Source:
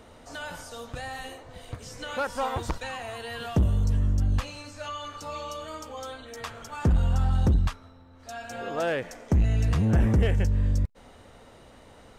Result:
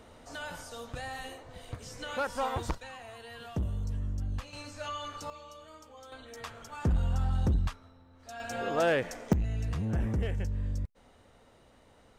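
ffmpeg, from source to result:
ffmpeg -i in.wav -af "asetnsamples=nb_out_samples=441:pad=0,asendcmd='2.75 volume volume -10dB;4.53 volume volume -2dB;5.3 volume volume -13dB;6.12 volume volume -5.5dB;8.4 volume volume 1dB;9.33 volume volume -9dB',volume=-3dB" out.wav

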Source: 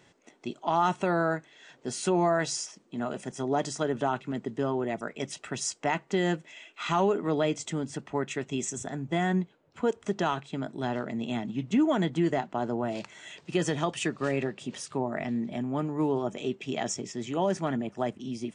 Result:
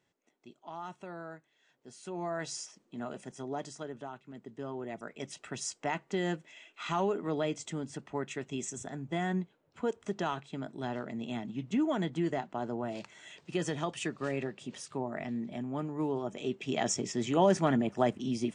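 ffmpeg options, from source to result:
ffmpeg -i in.wav -af "volume=12.5dB,afade=type=in:start_time=2.03:duration=0.55:silence=0.298538,afade=type=out:start_time=3.1:duration=1.1:silence=0.316228,afade=type=in:start_time=4.2:duration=1.28:silence=0.266073,afade=type=in:start_time=16.29:duration=0.84:silence=0.398107" out.wav

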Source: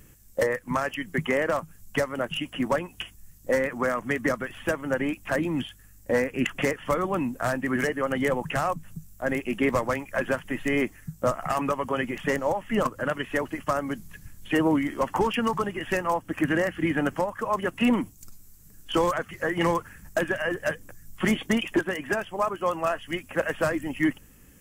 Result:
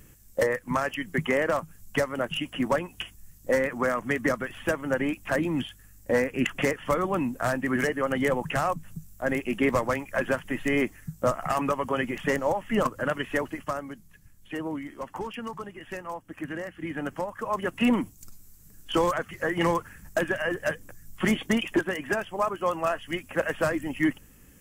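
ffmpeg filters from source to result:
ffmpeg -i in.wav -af "volume=10dB,afade=type=out:start_time=13.33:duration=0.63:silence=0.298538,afade=type=in:start_time=16.77:duration=1.07:silence=0.316228" out.wav

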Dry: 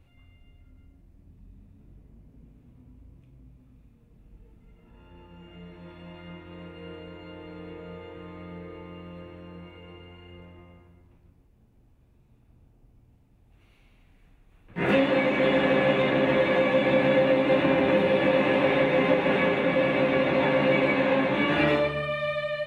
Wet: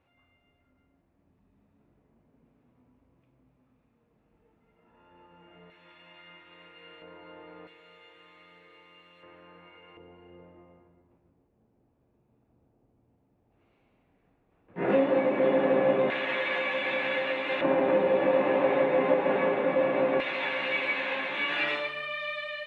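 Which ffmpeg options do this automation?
ffmpeg -i in.wav -af "asetnsamples=nb_out_samples=441:pad=0,asendcmd='5.7 bandpass f 2500;7.02 bandpass f 1100;7.67 bandpass f 4100;9.23 bandpass f 1500;9.97 bandpass f 530;16.1 bandpass f 2300;17.61 bandpass f 690;20.2 bandpass f 2800',bandpass=frequency=1000:width_type=q:width=0.72:csg=0" out.wav

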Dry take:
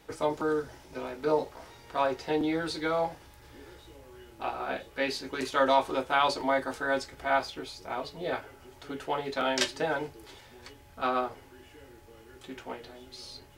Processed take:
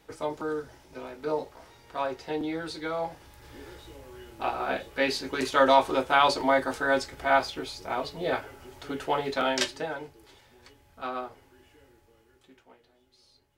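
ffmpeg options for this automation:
ffmpeg -i in.wav -af "volume=4dB,afade=type=in:start_time=2.99:duration=0.6:silence=0.446684,afade=type=out:start_time=9.26:duration=0.69:silence=0.334965,afade=type=out:start_time=11.69:duration=0.97:silence=0.266073" out.wav

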